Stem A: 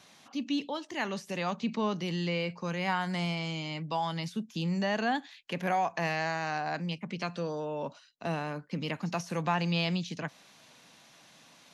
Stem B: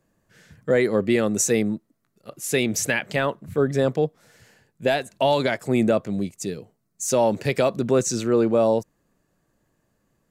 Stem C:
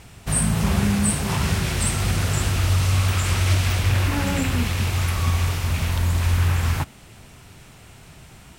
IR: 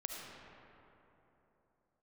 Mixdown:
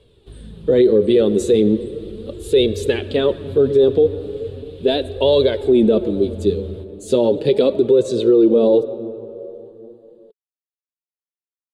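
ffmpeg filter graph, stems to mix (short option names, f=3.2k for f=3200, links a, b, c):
-filter_complex "[1:a]volume=3dB,asplit=2[a][b];[b]volume=-11.5dB[c];[2:a]acrossover=split=130[d][e];[e]acompressor=threshold=-46dB:ratio=2[f];[d][f]amix=inputs=2:normalize=0,volume=-10.5dB,asplit=3[g][h][i];[h]volume=-6.5dB[j];[i]volume=-14dB[k];[3:a]atrim=start_sample=2205[l];[c][j]amix=inputs=2:normalize=0[m];[m][l]afir=irnorm=-1:irlink=0[n];[k]aecho=0:1:1112:1[o];[a][g][n][o]amix=inputs=4:normalize=0,firequalizer=gain_entry='entry(140,0);entry(420,15);entry(680,-4);entry(2100,-10);entry(3600,10);entry(5700,-17);entry(9500,-6);entry(14000,-19)':delay=0.05:min_phase=1,flanger=delay=1.8:depth=8.8:regen=22:speed=0.37:shape=sinusoidal,alimiter=limit=-6dB:level=0:latency=1:release=23"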